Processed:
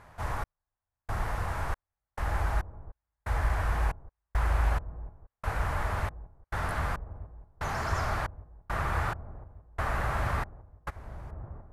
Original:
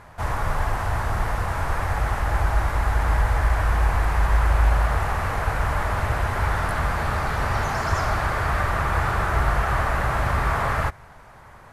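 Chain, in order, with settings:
gate pattern "xx...xxx.." 69 BPM −60 dB
on a send: delay with a low-pass on its return 1,175 ms, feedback 64%, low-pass 490 Hz, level −12 dB
on the sum: level −7.5 dB

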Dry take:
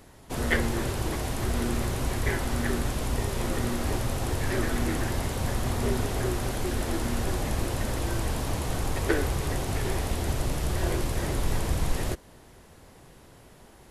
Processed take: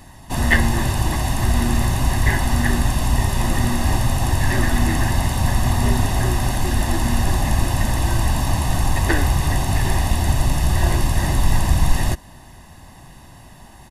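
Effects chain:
comb filter 1.1 ms, depth 74%
level +6.5 dB

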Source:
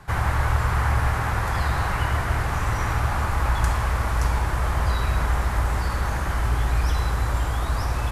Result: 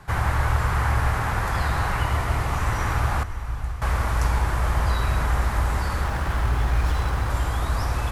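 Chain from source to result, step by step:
0:02.03–0:02.58: notch filter 1,600 Hz, Q 6.8
0:03.23–0:03.82: guitar amp tone stack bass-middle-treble 10-0-1
feedback delay with all-pass diffusion 516 ms, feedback 61%, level −15 dB
0:06.04–0:07.30: windowed peak hold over 5 samples

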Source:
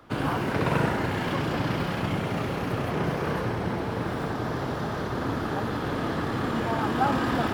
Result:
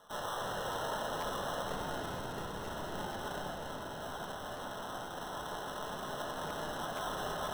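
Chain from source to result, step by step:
Butterworth high-pass 480 Hz 72 dB per octave, from 0:01.63 1,300 Hz
brickwall limiter −27 dBFS, peak gain reduction 10.5 dB
decimation without filtering 19×
convolution reverb RT60 1.7 s, pre-delay 5 ms, DRR −0.5 dB
regular buffer underruns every 0.48 s repeat, from 0:00.72
level −5 dB

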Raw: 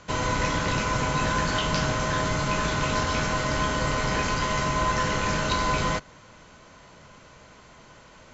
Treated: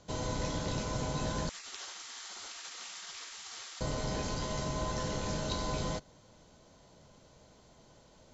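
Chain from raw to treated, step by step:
flat-topped bell 1,700 Hz −9.5 dB
0:01.49–0:03.81: gate on every frequency bin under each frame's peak −20 dB weak
level −7.5 dB

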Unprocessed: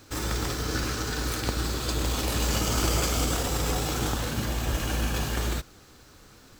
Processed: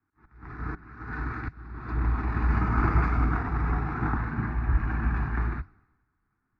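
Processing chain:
inverse Chebyshev low-pass filter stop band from 11,000 Hz, stop band 80 dB
volume swells 384 ms
flanger 1.9 Hz, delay 1.2 ms, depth 7.8 ms, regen −84%
phaser with its sweep stopped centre 1,300 Hz, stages 4
multiband upward and downward expander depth 100%
level +7.5 dB

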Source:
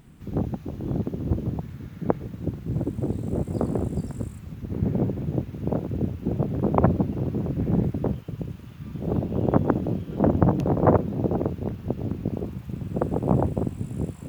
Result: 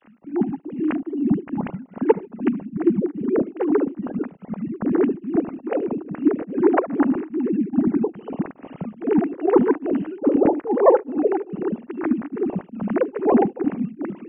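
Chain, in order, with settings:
three sine waves on the formant tracks
tape delay 75 ms, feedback 63%, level −17.5 dB, low-pass 1,200 Hz
automatic gain control gain up to 4.5 dB
Chebyshev low-pass filter 2,900 Hz, order 5
tremolo along a rectified sine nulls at 2.4 Hz
level +3 dB

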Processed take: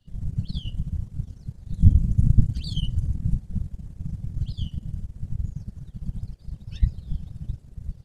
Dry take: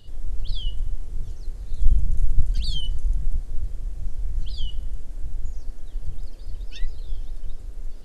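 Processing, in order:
power curve on the samples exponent 1.4
random phases in short frames

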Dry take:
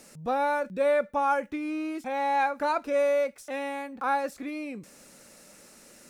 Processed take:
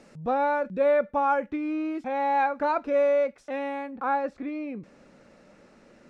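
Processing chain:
head-to-tape spacing loss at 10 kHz 23 dB, from 0:03.90 at 10 kHz 32 dB
level +3.5 dB

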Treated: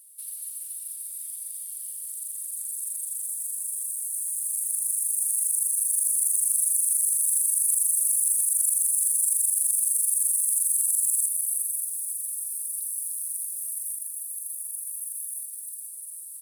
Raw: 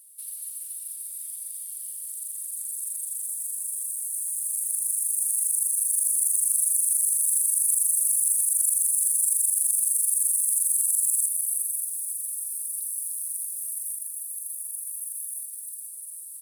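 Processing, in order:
soft clipping −8 dBFS, distortion −29 dB

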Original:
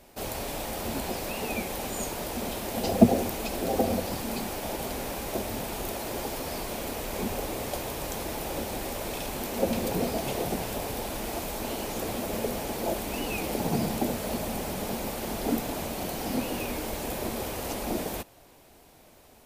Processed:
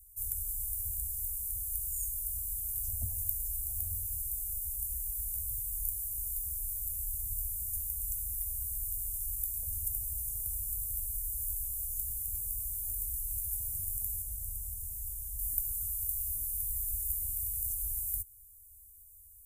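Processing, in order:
inverse Chebyshev band-stop filter 160–4,600 Hz, stop band 40 dB
high-shelf EQ 8,100 Hz +8 dB, from 0:14.22 +2.5 dB, from 0:15.39 +10 dB

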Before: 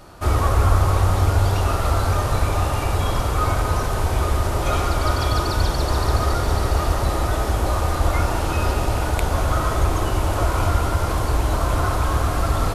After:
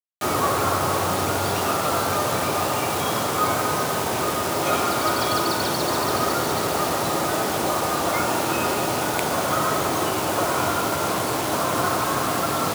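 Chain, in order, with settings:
pitch vibrato 2.6 Hz 6.5 cents
on a send at −12 dB: convolution reverb, pre-delay 29 ms
on the sum: bit reduction 5 bits
high-pass filter 150 Hz 24 dB per octave
level +1.5 dB

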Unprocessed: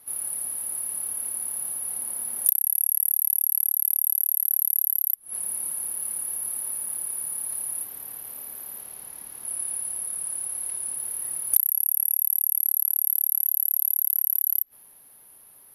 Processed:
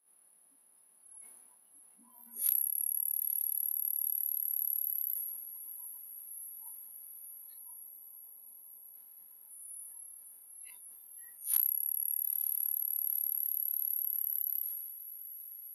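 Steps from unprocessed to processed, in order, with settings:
peak hold with a rise ahead of every peak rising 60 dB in 0.39 s
mains-hum notches 60/120/180/240/300 Hz
time-frequency box erased 0:07.59–0:08.93, 1,200–5,800 Hz
noise reduction from a noise print of the clip's start 23 dB
Chebyshev high-pass filter 160 Hz, order 10
high-shelf EQ 8,700 Hz −11.5 dB
feedback delay with all-pass diffusion 929 ms, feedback 78%, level −14.5 dB
level that may fall only so fast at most 33 dB per second
level −4.5 dB

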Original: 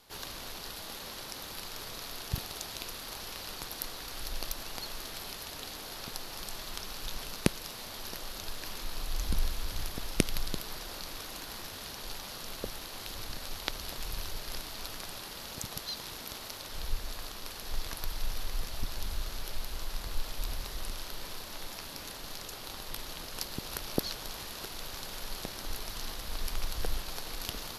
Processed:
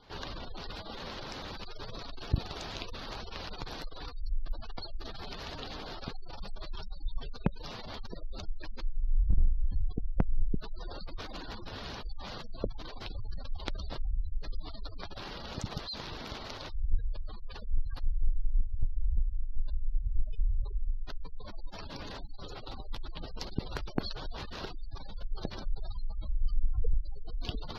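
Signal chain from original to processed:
gate on every frequency bin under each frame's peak −15 dB strong
low-shelf EQ 200 Hz +4 dB
gain into a clipping stage and back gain 21.5 dB
harmonic generator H 4 −30 dB, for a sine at −16.5 dBFS
high-frequency loss of the air 160 metres
level +4.5 dB

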